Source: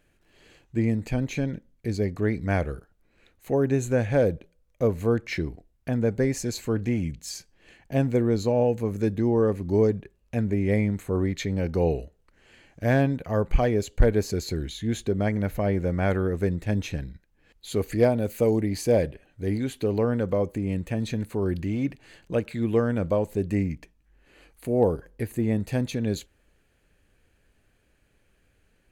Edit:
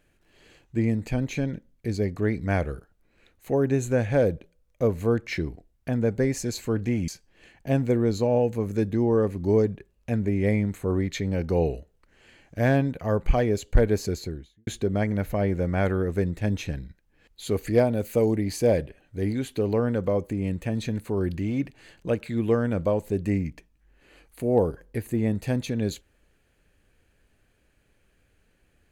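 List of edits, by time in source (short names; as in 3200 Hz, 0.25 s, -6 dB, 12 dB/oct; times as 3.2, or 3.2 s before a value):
7.08–7.33 cut
14.29–14.92 studio fade out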